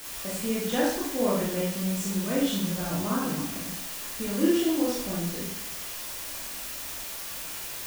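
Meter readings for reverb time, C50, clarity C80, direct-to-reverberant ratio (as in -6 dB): 0.70 s, 0.5 dB, 5.0 dB, -7.0 dB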